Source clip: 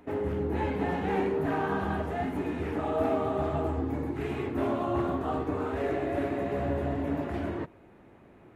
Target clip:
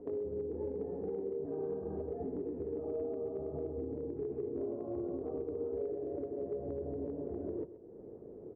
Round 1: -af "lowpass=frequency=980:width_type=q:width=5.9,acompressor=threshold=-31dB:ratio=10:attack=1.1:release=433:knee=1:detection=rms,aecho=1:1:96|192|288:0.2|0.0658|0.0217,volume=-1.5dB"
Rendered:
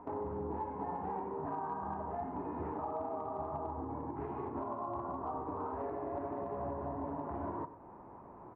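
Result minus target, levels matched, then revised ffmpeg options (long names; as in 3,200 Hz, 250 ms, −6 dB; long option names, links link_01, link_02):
1,000 Hz band +18.5 dB; echo 33 ms early
-af "lowpass=frequency=450:width_type=q:width=5.9,acompressor=threshold=-31dB:ratio=10:attack=1.1:release=433:knee=1:detection=rms,aecho=1:1:129|258|387:0.2|0.0658|0.0217,volume=-1.5dB"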